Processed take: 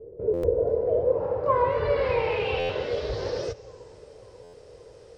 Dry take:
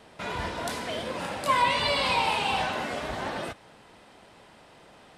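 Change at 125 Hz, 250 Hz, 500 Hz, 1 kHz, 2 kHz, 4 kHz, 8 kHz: +5.0 dB, −1.0 dB, +10.5 dB, −4.0 dB, −6.5 dB, −10.0 dB, below −10 dB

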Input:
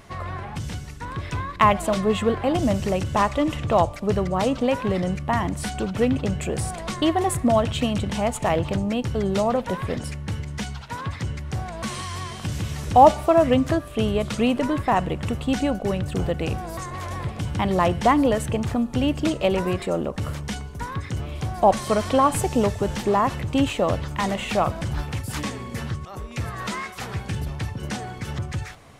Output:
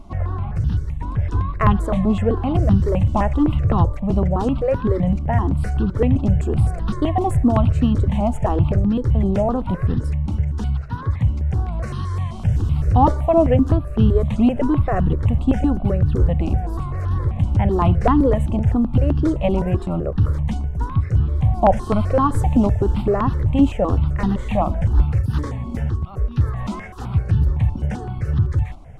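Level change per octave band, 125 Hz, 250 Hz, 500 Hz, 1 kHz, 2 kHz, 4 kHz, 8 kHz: +10.0 dB, +4.5 dB, 0.0 dB, −1.5 dB, −5.0 dB, −9.5 dB, below −10 dB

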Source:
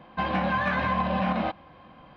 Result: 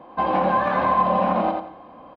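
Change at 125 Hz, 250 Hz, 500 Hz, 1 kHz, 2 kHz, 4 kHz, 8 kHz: −1.0 dB, +2.0 dB, +8.5 dB, +8.0 dB, −1.5 dB, −2.5 dB, can't be measured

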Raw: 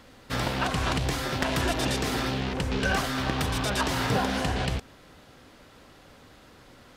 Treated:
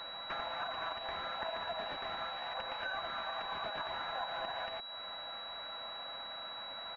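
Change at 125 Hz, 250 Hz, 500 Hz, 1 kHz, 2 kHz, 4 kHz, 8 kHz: −31.0 dB, −27.5 dB, −11.0 dB, −7.5 dB, −10.5 dB, −6.5 dB, below −35 dB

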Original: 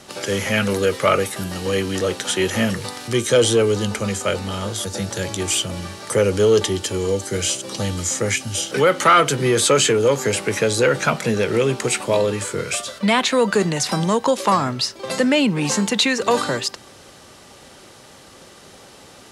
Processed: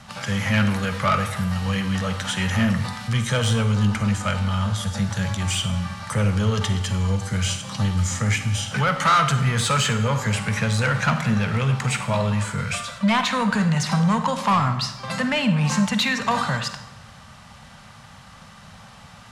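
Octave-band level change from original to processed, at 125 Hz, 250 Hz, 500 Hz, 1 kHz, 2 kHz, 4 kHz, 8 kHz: +5.5, −0.5, −12.0, −1.5, −1.5, −4.0, −7.5 decibels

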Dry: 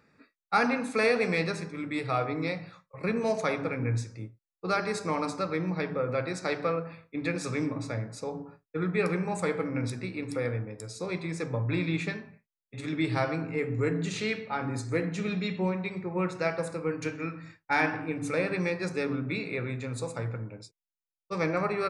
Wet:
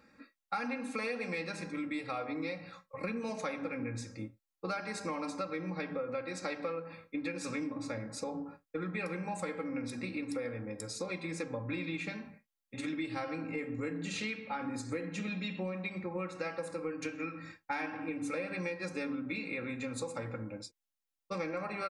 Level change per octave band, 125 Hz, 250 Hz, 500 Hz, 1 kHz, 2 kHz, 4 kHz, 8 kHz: −11.5, −6.0, −8.5, −8.0, −7.0, −5.5, −3.5 decibels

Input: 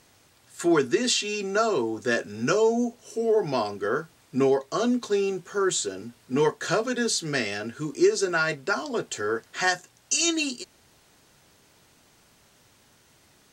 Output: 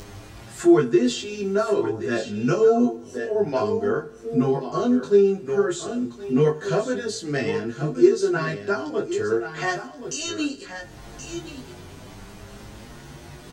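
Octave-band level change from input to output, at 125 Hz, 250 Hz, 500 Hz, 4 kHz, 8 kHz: +7.5, +5.5, +4.0, −5.0, −6.5 decibels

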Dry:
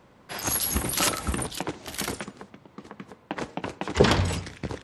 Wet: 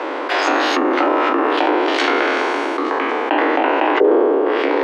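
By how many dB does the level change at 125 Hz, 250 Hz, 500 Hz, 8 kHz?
below −25 dB, +12.5 dB, +15.5 dB, −10.5 dB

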